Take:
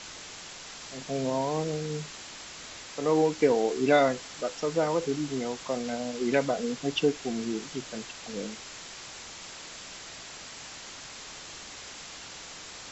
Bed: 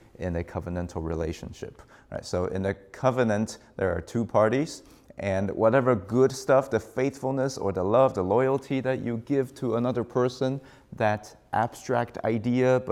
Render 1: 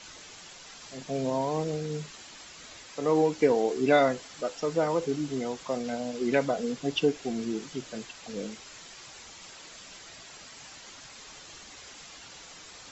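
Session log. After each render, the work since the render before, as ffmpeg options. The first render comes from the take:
-af "afftdn=nr=7:nf=-44"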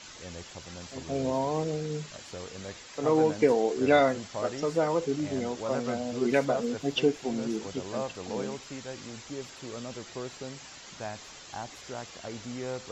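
-filter_complex "[1:a]volume=-14dB[a];[0:a][a]amix=inputs=2:normalize=0"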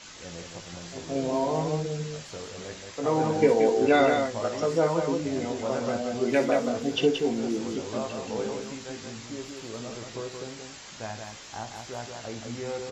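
-filter_complex "[0:a]asplit=2[a][b];[b]adelay=18,volume=-6.5dB[c];[a][c]amix=inputs=2:normalize=0,aecho=1:1:58.31|177.8:0.282|0.562"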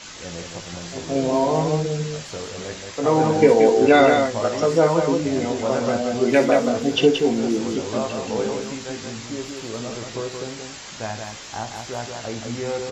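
-af "volume=7dB,alimiter=limit=-3dB:level=0:latency=1"

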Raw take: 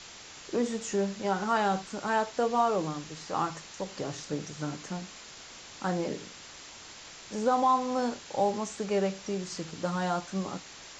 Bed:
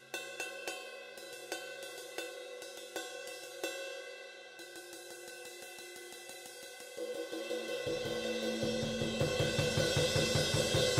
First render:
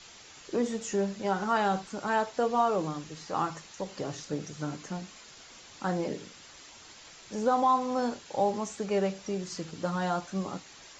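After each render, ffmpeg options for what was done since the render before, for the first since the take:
-af "afftdn=nr=6:nf=-48"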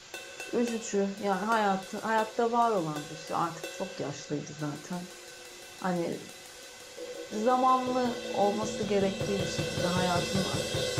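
-filter_complex "[1:a]volume=-0.5dB[a];[0:a][a]amix=inputs=2:normalize=0"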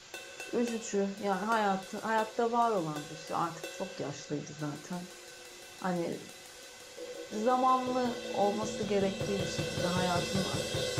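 -af "volume=-2.5dB"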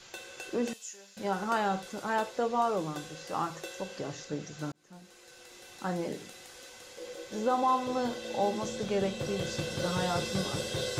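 -filter_complex "[0:a]asettb=1/sr,asplit=3[a][b][c];[a]atrim=end=0.734[d];[b]atrim=start=0.73:end=1.17,asetpts=PTS-STARTPTS,afade=t=in:d=0.004:c=qsin,afade=t=out:st=0.436:d=0.004:c=qsin,aderivative[e];[c]atrim=start=1.166[f];[d][e]acrossfade=d=0.004:c1=hsin:c2=qsin[g];[g][f]acrossfade=d=0.004:c1=qsin:c2=hsin,asplit=2[h][i];[h]atrim=end=4.72,asetpts=PTS-STARTPTS,afade=t=out:st=4.716:d=0.004:c=hsin[j];[i]atrim=start=4.72,asetpts=PTS-STARTPTS,afade=t=in:d=1.47:c=qsin[k];[j][k]concat=n=2:v=0:a=1"

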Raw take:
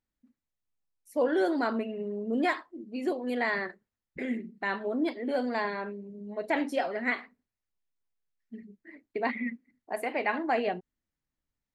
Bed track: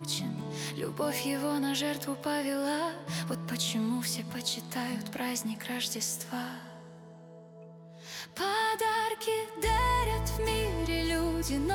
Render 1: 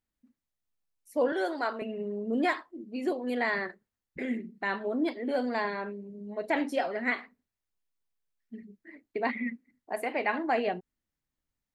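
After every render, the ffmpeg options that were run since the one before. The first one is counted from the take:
-filter_complex "[0:a]asettb=1/sr,asplit=3[a][b][c];[a]atrim=end=1.324[d];[b]atrim=start=1.32:end=1.82,asetpts=PTS-STARTPTS,afade=t=in:d=0.004:c=qsin,afade=t=out:st=0.496:d=0.004:c=qsin,highpass=480[e];[c]atrim=start=1.816[f];[d][e]acrossfade=d=0.004:c1=hsin:c2=qsin[g];[g][f]acrossfade=d=0.004:c1=qsin:c2=hsin"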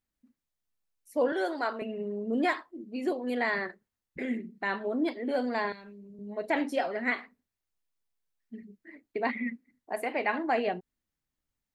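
-filter_complex "[0:a]asettb=1/sr,asplit=3[a][b][c];[a]atrim=end=5.724[d];[b]atrim=start=5.72:end=6.19,asetpts=PTS-STARTPTS,afade=t=in:d=0.004:c=qsin,afade=t=out:st=0.466:d=0.004:c=qsin,acrossover=split=160|3000[e][f][g];[f]acompressor=threshold=-50dB:ratio=6:attack=3.2:release=140:knee=2.83:detection=peak[h];[e][h][g]amix=inputs=3:normalize=0[i];[c]atrim=start=6.186[j];[d][i]acrossfade=d=0.004:c1=hsin:c2=qsin[k];[k][j]acrossfade=d=0.004:c1=qsin:c2=hsin"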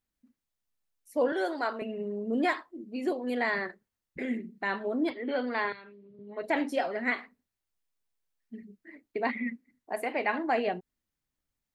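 -filter_complex "[0:a]asettb=1/sr,asplit=3[a][b][c];[a]atrim=end=5.104[d];[b]atrim=start=5.1:end=6.43,asetpts=PTS-STARTPTS,afade=t=in:d=0.004:c=qsin,afade=t=out:st=1.326:d=0.004:c=qsin,highpass=120,equalizer=f=130:t=q:w=4:g=8,equalizer=f=200:t=q:w=4:g=-8,equalizer=f=680:t=q:w=4:g=-5,equalizer=f=1.3k:t=q:w=4:g=6,equalizer=f=2.1k:t=q:w=4:g=4,equalizer=f=3.2k:t=q:w=4:g=4,lowpass=f=4.4k:w=0.5412,lowpass=f=4.4k:w=1.3066[e];[c]atrim=start=6.426[f];[d][e]acrossfade=d=0.004:c1=hsin:c2=qsin[g];[g][f]acrossfade=d=0.004:c1=qsin:c2=hsin"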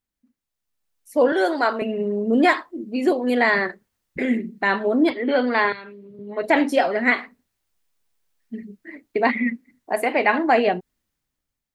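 -af "dynaudnorm=f=380:g=5:m=11dB"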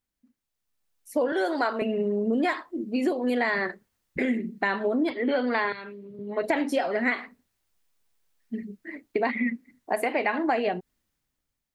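-af "acompressor=threshold=-22dB:ratio=6"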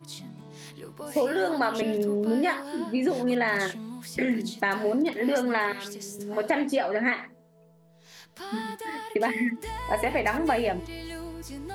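-filter_complex "[1:a]volume=-8dB[a];[0:a][a]amix=inputs=2:normalize=0"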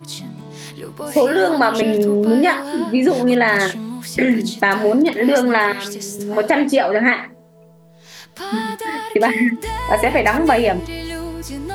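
-af "volume=10.5dB,alimiter=limit=-1dB:level=0:latency=1"

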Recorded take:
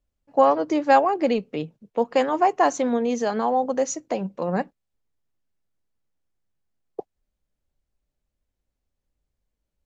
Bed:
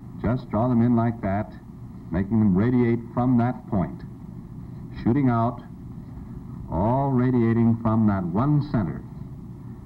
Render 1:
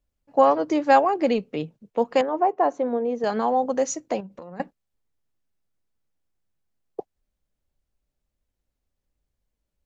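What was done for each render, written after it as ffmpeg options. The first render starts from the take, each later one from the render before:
-filter_complex "[0:a]asettb=1/sr,asplit=3[a][b][c];[a]atrim=end=2.214[d];[b]atrim=start=2.21:end=3.24,asetpts=PTS-STARTPTS,afade=t=in:d=0.004:c=qsin,afade=t=out:st=1.026:d=0.004:c=qsin,bandpass=f=510:t=q:w=0.91[e];[c]atrim=start=3.236[f];[d][e]acrossfade=d=0.004:c1=hsin:c2=qsin[g];[g][f]acrossfade=d=0.004:c1=qsin:c2=hsin,asettb=1/sr,asplit=3[h][i][j];[h]atrim=end=4.204[k];[i]atrim=start=4.2:end=4.6,asetpts=PTS-STARTPTS,afade=t=in:d=0.004:c=qsin,afade=t=out:st=0.396:d=0.004:c=qsin,acompressor=threshold=-35dB:ratio=16:attack=3.2:release=140:knee=1:detection=peak[l];[j]atrim=start=4.596[m];[k][l]acrossfade=d=0.004:c1=hsin:c2=qsin[n];[n][m]acrossfade=d=0.004:c1=qsin:c2=hsin"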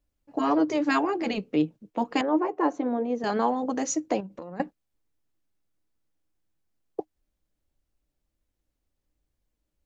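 -af "afftfilt=real='re*lt(hypot(re,im),0.631)':imag='im*lt(hypot(re,im),0.631)':win_size=1024:overlap=0.75,equalizer=f=310:w=7.6:g=9.5"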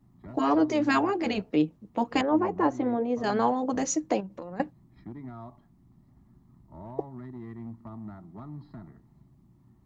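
-filter_complex "[1:a]volume=-21dB[a];[0:a][a]amix=inputs=2:normalize=0"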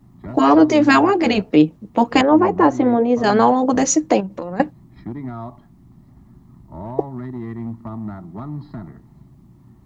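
-af "volume=11.5dB,alimiter=limit=-2dB:level=0:latency=1"

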